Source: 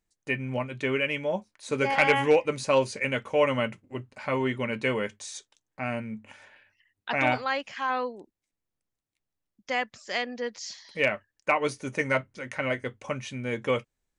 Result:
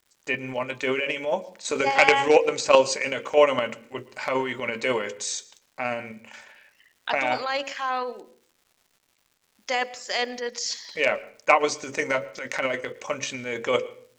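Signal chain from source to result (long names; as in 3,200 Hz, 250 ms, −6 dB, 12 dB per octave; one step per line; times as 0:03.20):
Chebyshev low-pass filter 8,200 Hz, order 8
hum removal 46.06 Hz, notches 12
in parallel at −1.5 dB: output level in coarse steps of 22 dB
on the sum: bass and treble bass −15 dB, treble +5 dB
transient designer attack +11 dB, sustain −5 dB
dynamic equaliser 1,800 Hz, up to −5 dB, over −29 dBFS, Q 0.98
transient designer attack −5 dB, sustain +11 dB
surface crackle 320 per second −49 dBFS
on a send at −20 dB: convolution reverb, pre-delay 113 ms
on the sum: level −1 dB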